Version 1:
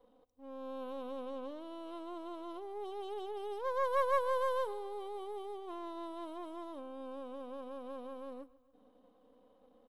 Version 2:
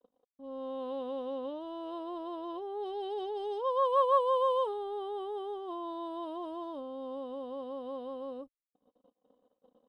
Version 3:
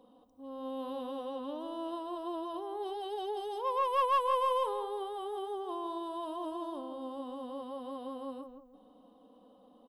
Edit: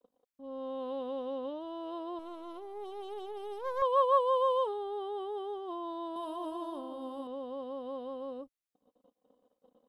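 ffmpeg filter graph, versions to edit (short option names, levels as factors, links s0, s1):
-filter_complex "[1:a]asplit=3[s0][s1][s2];[s0]atrim=end=2.192[s3];[0:a]atrim=start=2.188:end=3.822[s4];[s1]atrim=start=3.818:end=6.162[s5];[2:a]atrim=start=6.158:end=7.272[s6];[s2]atrim=start=7.268[s7];[s3][s4]acrossfade=d=0.004:c1=hsin:c2=hsin[s8];[s8][s5]acrossfade=d=0.004:c1=hsin:c2=hsin[s9];[s9][s6]acrossfade=d=0.004:c1=hsin:c2=hsin[s10];[s10][s7]acrossfade=d=0.004:c1=hsin:c2=hsin"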